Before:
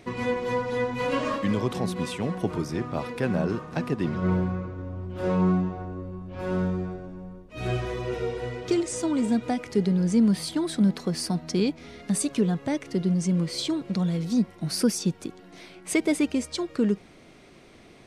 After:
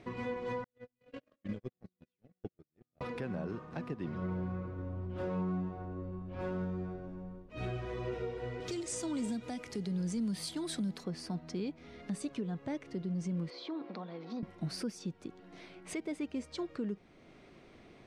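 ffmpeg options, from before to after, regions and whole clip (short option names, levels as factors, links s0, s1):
-filter_complex "[0:a]asettb=1/sr,asplit=3[s0][s1][s2];[s0]atrim=end=0.644[s3];[s1]atrim=start=0.64:end=3.01,asetpts=PTS-STARTPTS,afade=t=in:d=0.004:c=qsin,afade=t=out:st=2.366:d=0.004:c=qsin,agate=range=0.00251:threshold=0.0708:ratio=16:release=100:detection=peak,equalizer=f=1000:t=o:w=0.57:g=-14[s4];[s2]atrim=start=3.006[s5];[s3][s4]acrossfade=d=0.004:c1=hsin:c2=qsin[s6];[s6][s5]acrossfade=d=0.004:c1=qsin:c2=hsin,asettb=1/sr,asplit=3[s7][s8][s9];[s7]atrim=end=8.604[s10];[s8]atrim=start=8.6:end=11.04,asetpts=PTS-STARTPTS,afade=t=in:d=0.004:c=qsin,afade=t=out:st=2.436:d=0.004:c=qsin,aemphasis=mode=production:type=75kf,asoftclip=type=hard:threshold=0.2,acrossover=split=190|3000[s11][s12][s13];[s12]acompressor=threshold=0.0316:ratio=2:attack=3.2:release=140:knee=2.83:detection=peak[s14];[s11][s14][s13]amix=inputs=3:normalize=0[s15];[s9]atrim=start=11.036[s16];[s10][s15]acrossfade=d=0.004:c1=hsin:c2=qsin[s17];[s17][s16]acrossfade=d=0.004:c1=qsin:c2=hsin,asettb=1/sr,asplit=3[s18][s19][s20];[s18]atrim=end=13.504[s21];[s19]atrim=start=13.5:end=14.43,asetpts=PTS-STARTPTS,afade=t=in:d=0.004:c=qsin,afade=t=out:st=0.926:d=0.004:c=qsin,bandreject=f=50:t=h:w=6,bandreject=f=100:t=h:w=6,bandreject=f=150:t=h:w=6,bandreject=f=200:t=h:w=6,bandreject=f=250:t=h:w=6,bandreject=f=300:t=h:w=6,bandreject=f=350:t=h:w=6,bandreject=f=400:t=h:w=6,acompressor=threshold=0.0398:ratio=5:attack=3.2:release=140:knee=1:detection=peak,highpass=f=250:w=0.5412,highpass=f=250:w=1.3066,equalizer=f=770:t=q:w=4:g=6,equalizer=f=1100:t=q:w=4:g=5,equalizer=f=3000:t=q:w=4:g=-4,lowpass=f=4500:w=0.5412,lowpass=f=4500:w=1.3066[s22];[s20]atrim=start=14.426[s23];[s21][s22]acrossfade=d=0.004:c1=hsin:c2=qsin[s24];[s24][s23]acrossfade=d=0.004:c1=qsin:c2=hsin,aemphasis=mode=reproduction:type=50fm,alimiter=limit=0.0708:level=0:latency=1:release=454,volume=0.531"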